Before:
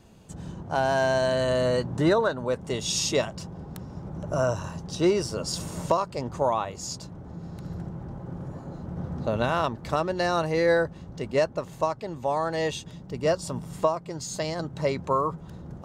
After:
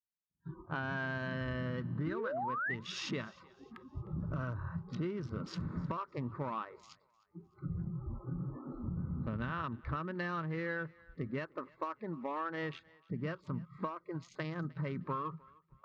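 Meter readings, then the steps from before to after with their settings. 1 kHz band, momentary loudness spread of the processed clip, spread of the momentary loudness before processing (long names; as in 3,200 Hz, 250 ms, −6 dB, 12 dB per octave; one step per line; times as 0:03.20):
−12.0 dB, 11 LU, 15 LU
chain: adaptive Wiener filter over 15 samples
drawn EQ curve 240 Hz 0 dB, 730 Hz −17 dB, 1,300 Hz +4 dB, 4,600 Hz −4 dB
noise reduction from a noise print of the clip's start 30 dB
high-frequency loss of the air 270 metres
notch filter 1,400 Hz, Q 23
sound drawn into the spectrogram rise, 0:02.06–0:02.75, 270–2,100 Hz −28 dBFS
downward expander −55 dBFS
downward compressor 6 to 1, threshold −38 dBFS, peak gain reduction 17 dB
feedback echo with a high-pass in the loop 306 ms, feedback 35%, high-pass 580 Hz, level −22.5 dB
level +3 dB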